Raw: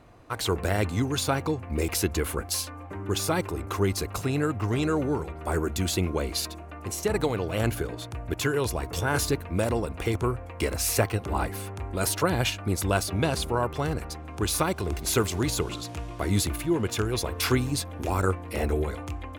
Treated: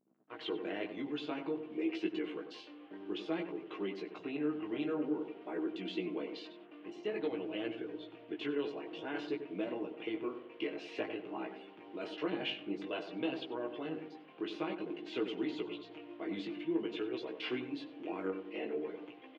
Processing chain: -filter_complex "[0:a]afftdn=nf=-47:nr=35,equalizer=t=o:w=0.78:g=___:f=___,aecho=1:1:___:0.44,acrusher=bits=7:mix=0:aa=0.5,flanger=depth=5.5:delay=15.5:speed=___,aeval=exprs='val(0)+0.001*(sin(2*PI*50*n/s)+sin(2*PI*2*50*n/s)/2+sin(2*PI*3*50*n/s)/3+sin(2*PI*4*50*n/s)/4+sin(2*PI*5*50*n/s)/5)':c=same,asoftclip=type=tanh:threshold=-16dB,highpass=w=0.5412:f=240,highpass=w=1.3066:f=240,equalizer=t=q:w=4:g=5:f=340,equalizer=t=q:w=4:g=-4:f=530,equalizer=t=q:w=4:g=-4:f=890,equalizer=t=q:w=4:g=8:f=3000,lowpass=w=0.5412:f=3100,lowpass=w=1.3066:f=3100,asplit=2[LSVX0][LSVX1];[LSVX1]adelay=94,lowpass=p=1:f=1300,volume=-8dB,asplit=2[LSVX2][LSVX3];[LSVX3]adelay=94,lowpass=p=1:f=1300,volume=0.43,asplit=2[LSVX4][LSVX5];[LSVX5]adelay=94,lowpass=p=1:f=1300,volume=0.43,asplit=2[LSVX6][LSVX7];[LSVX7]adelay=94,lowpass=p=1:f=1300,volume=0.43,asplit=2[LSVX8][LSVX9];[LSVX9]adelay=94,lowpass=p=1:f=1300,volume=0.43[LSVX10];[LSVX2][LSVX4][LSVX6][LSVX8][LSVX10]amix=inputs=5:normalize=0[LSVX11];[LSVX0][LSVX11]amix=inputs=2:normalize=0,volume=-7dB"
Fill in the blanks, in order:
-9, 1300, 6.4, 0.52